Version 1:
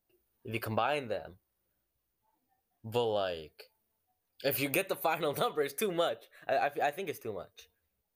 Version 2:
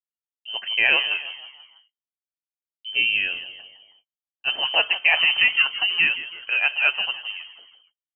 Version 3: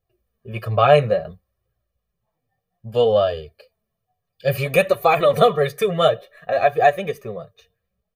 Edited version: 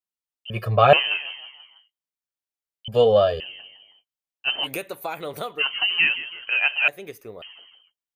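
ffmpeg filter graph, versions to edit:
-filter_complex "[2:a]asplit=2[a][b];[0:a]asplit=2[c][d];[1:a]asplit=5[e][f][g][h][i];[e]atrim=end=0.502[j];[a]atrim=start=0.498:end=0.932[k];[f]atrim=start=0.928:end=2.882[l];[b]atrim=start=2.878:end=3.402[m];[g]atrim=start=3.398:end=4.68[n];[c]atrim=start=4.62:end=5.64[o];[h]atrim=start=5.58:end=6.882[p];[d]atrim=start=6.878:end=7.422[q];[i]atrim=start=7.418[r];[j][k]acrossfade=d=0.004:c1=hsin:c2=hsin[s];[s][l]acrossfade=d=0.004:c1=hsin:c2=hsin[t];[t][m]acrossfade=d=0.004:c1=hsin:c2=hsin[u];[u][n]acrossfade=d=0.004:c1=hsin:c2=hsin[v];[v][o]acrossfade=d=0.06:c1=tri:c2=tri[w];[w][p]acrossfade=d=0.06:c1=tri:c2=tri[x];[x][q]acrossfade=d=0.004:c1=hsin:c2=hsin[y];[y][r]acrossfade=d=0.004:c1=hsin:c2=hsin"

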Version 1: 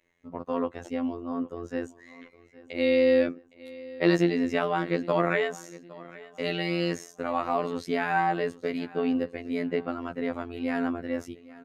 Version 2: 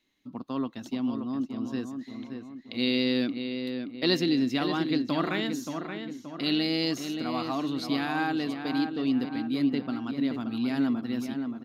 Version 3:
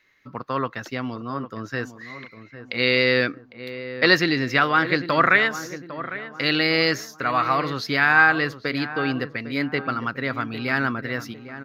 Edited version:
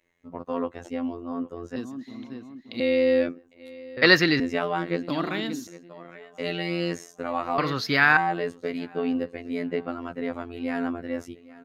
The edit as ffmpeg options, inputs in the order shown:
-filter_complex "[1:a]asplit=2[a][b];[2:a]asplit=2[c][d];[0:a]asplit=5[e][f][g][h][i];[e]atrim=end=1.762[j];[a]atrim=start=1.758:end=2.802[k];[f]atrim=start=2.798:end=3.972[l];[c]atrim=start=3.968:end=4.402[m];[g]atrim=start=4.398:end=5.092[n];[b]atrim=start=5.088:end=5.672[o];[h]atrim=start=5.668:end=7.582[p];[d]atrim=start=7.578:end=8.172[q];[i]atrim=start=8.168[r];[j][k]acrossfade=d=0.004:c1=hsin:c2=hsin[s];[s][l]acrossfade=d=0.004:c1=hsin:c2=hsin[t];[t][m]acrossfade=d=0.004:c1=hsin:c2=hsin[u];[u][n]acrossfade=d=0.004:c1=hsin:c2=hsin[v];[v][o]acrossfade=d=0.004:c1=hsin:c2=hsin[w];[w][p]acrossfade=d=0.004:c1=hsin:c2=hsin[x];[x][q]acrossfade=d=0.004:c1=hsin:c2=hsin[y];[y][r]acrossfade=d=0.004:c1=hsin:c2=hsin"

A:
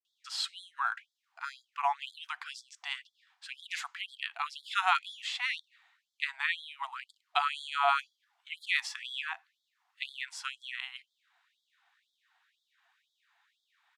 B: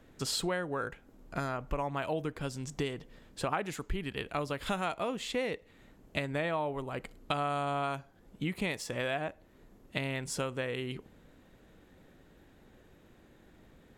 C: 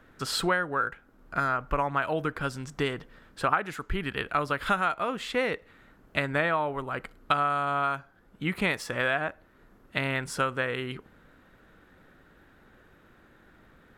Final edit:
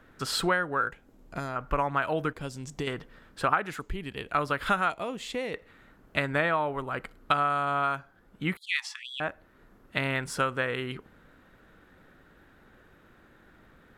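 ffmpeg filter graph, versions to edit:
-filter_complex "[1:a]asplit=4[a][b][c][d];[2:a]asplit=6[e][f][g][h][i][j];[e]atrim=end=0.912[k];[a]atrim=start=0.908:end=1.562[l];[f]atrim=start=1.558:end=2.332[m];[b]atrim=start=2.328:end=2.872[n];[g]atrim=start=2.868:end=3.802[o];[c]atrim=start=3.798:end=4.322[p];[h]atrim=start=4.318:end=4.902[q];[d]atrim=start=4.898:end=5.542[r];[i]atrim=start=5.538:end=8.572[s];[0:a]atrim=start=8.568:end=9.202[t];[j]atrim=start=9.198[u];[k][l]acrossfade=d=0.004:c1=hsin:c2=hsin[v];[v][m]acrossfade=d=0.004:c1=hsin:c2=hsin[w];[w][n]acrossfade=d=0.004:c1=hsin:c2=hsin[x];[x][o]acrossfade=d=0.004:c1=hsin:c2=hsin[y];[y][p]acrossfade=d=0.004:c1=hsin:c2=hsin[z];[z][q]acrossfade=d=0.004:c1=hsin:c2=hsin[aa];[aa][r]acrossfade=d=0.004:c1=hsin:c2=hsin[ab];[ab][s]acrossfade=d=0.004:c1=hsin:c2=hsin[ac];[ac][t]acrossfade=d=0.004:c1=hsin:c2=hsin[ad];[ad][u]acrossfade=d=0.004:c1=hsin:c2=hsin"

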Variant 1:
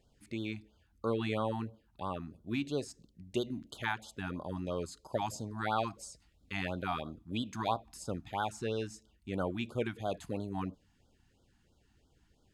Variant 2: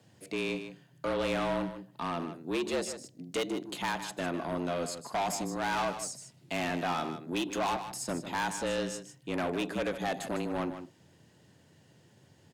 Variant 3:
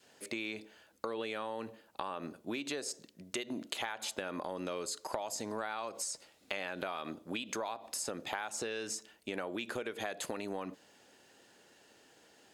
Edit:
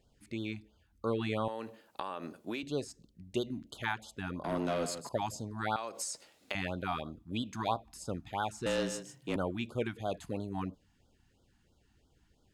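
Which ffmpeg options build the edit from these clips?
-filter_complex "[2:a]asplit=2[a][b];[1:a]asplit=2[c][d];[0:a]asplit=5[e][f][g][h][i];[e]atrim=end=1.482[j];[a]atrim=start=1.478:end=2.632[k];[f]atrim=start=2.628:end=4.442[l];[c]atrim=start=4.438:end=5.092[m];[g]atrim=start=5.088:end=5.762[n];[b]atrim=start=5.758:end=6.552[o];[h]atrim=start=6.548:end=8.662[p];[d]atrim=start=8.658:end=9.362[q];[i]atrim=start=9.358[r];[j][k]acrossfade=d=0.004:c1=hsin:c2=hsin[s];[s][l]acrossfade=d=0.004:c1=hsin:c2=hsin[t];[t][m]acrossfade=d=0.004:c1=hsin:c2=hsin[u];[u][n]acrossfade=d=0.004:c1=hsin:c2=hsin[v];[v][o]acrossfade=d=0.004:c1=hsin:c2=hsin[w];[w][p]acrossfade=d=0.004:c1=hsin:c2=hsin[x];[x][q]acrossfade=d=0.004:c1=hsin:c2=hsin[y];[y][r]acrossfade=d=0.004:c1=hsin:c2=hsin"

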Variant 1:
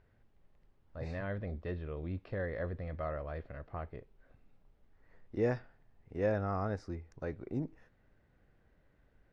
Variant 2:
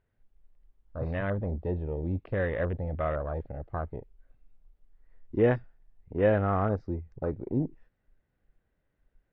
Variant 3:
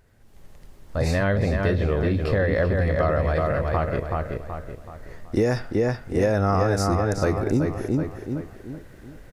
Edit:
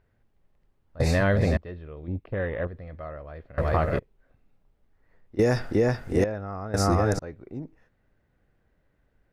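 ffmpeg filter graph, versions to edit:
-filter_complex "[2:a]asplit=4[a][b][c][d];[0:a]asplit=6[e][f][g][h][i][j];[e]atrim=end=1.002[k];[a]atrim=start=0.998:end=1.572[l];[f]atrim=start=1.568:end=2.082[m];[1:a]atrim=start=2.078:end=2.672[n];[g]atrim=start=2.668:end=3.582[o];[b]atrim=start=3.578:end=3.992[p];[h]atrim=start=3.988:end=5.392[q];[c]atrim=start=5.388:end=6.242[r];[i]atrim=start=6.238:end=6.742[s];[d]atrim=start=6.738:end=7.192[t];[j]atrim=start=7.188[u];[k][l]acrossfade=d=0.004:c1=hsin:c2=hsin[v];[v][m]acrossfade=d=0.004:c1=hsin:c2=hsin[w];[w][n]acrossfade=d=0.004:c1=hsin:c2=hsin[x];[x][o]acrossfade=d=0.004:c1=hsin:c2=hsin[y];[y][p]acrossfade=d=0.004:c1=hsin:c2=hsin[z];[z][q]acrossfade=d=0.004:c1=hsin:c2=hsin[aa];[aa][r]acrossfade=d=0.004:c1=hsin:c2=hsin[ab];[ab][s]acrossfade=d=0.004:c1=hsin:c2=hsin[ac];[ac][t]acrossfade=d=0.004:c1=hsin:c2=hsin[ad];[ad][u]acrossfade=d=0.004:c1=hsin:c2=hsin"

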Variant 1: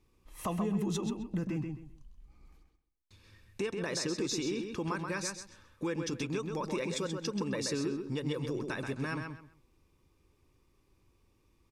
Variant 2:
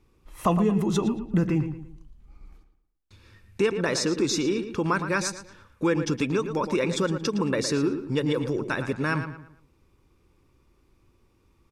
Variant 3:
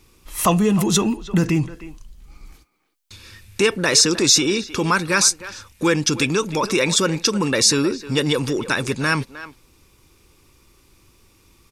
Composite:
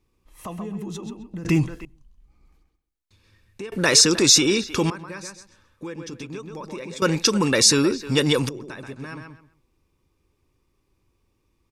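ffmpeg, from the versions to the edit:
-filter_complex "[2:a]asplit=3[a][b][c];[0:a]asplit=4[d][e][f][g];[d]atrim=end=1.452[h];[a]atrim=start=1.448:end=1.852[i];[e]atrim=start=1.848:end=3.722[j];[b]atrim=start=3.718:end=4.902[k];[f]atrim=start=4.898:end=7.022[l];[c]atrim=start=7.018:end=8.492[m];[g]atrim=start=8.488[n];[h][i]acrossfade=d=0.004:c1=hsin:c2=hsin[o];[o][j]acrossfade=d=0.004:c1=hsin:c2=hsin[p];[p][k]acrossfade=d=0.004:c1=hsin:c2=hsin[q];[q][l]acrossfade=d=0.004:c1=hsin:c2=hsin[r];[r][m]acrossfade=d=0.004:c1=hsin:c2=hsin[s];[s][n]acrossfade=d=0.004:c1=hsin:c2=hsin"

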